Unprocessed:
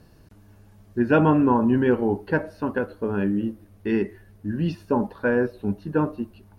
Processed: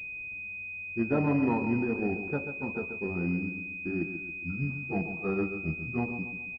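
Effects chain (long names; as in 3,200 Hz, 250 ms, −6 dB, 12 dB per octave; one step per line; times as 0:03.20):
pitch glide at a constant tempo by −4.5 semitones starting unshifted
repeating echo 137 ms, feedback 45%, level −9 dB
switching amplifier with a slow clock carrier 2,500 Hz
level −7.5 dB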